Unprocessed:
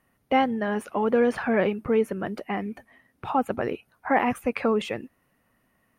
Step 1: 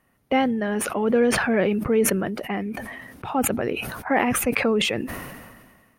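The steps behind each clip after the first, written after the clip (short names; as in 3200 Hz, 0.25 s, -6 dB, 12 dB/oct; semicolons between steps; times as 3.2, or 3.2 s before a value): dynamic EQ 1000 Hz, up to -6 dB, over -36 dBFS, Q 1.3; sustainer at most 36 dB/s; gain +2.5 dB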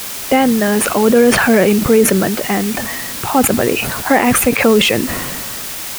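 requantised 6-bit, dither triangular; maximiser +11.5 dB; gain -1 dB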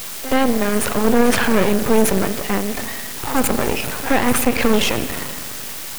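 pre-echo 75 ms -14 dB; spring tank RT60 1.9 s, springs 41 ms, chirp 70 ms, DRR 10.5 dB; half-wave rectifier; gain -1.5 dB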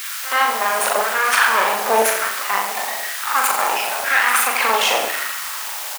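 LFO high-pass saw down 0.99 Hz 650–1600 Hz; on a send: reverse bouncing-ball echo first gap 40 ms, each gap 1.15×, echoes 5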